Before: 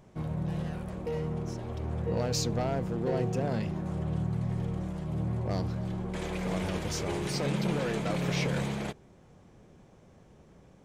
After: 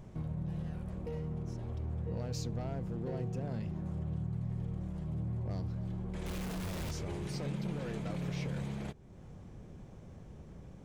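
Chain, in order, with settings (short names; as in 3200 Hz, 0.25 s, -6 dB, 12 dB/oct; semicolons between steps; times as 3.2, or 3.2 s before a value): 6.26–6.91 infinite clipping; low shelf 190 Hz +11.5 dB; compressor 2:1, threshold -45 dBFS, peak gain reduction 14 dB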